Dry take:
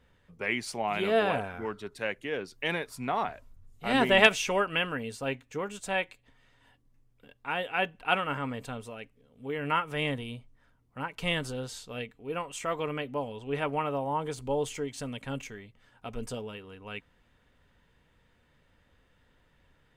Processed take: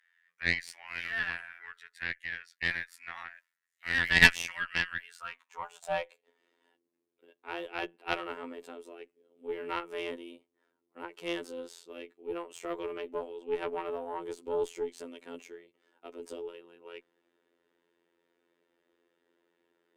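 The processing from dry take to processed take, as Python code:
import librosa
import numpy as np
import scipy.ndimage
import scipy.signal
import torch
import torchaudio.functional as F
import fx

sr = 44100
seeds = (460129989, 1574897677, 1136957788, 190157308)

y = fx.robotise(x, sr, hz=85.7)
y = fx.filter_sweep_highpass(y, sr, from_hz=1800.0, to_hz=360.0, start_s=4.96, end_s=6.43, q=6.3)
y = fx.cheby_harmonics(y, sr, harmonics=(2, 6, 7), levels_db=(-13, -20, -28), full_scale_db=3.0)
y = F.gain(torch.from_numpy(y), -5.0).numpy()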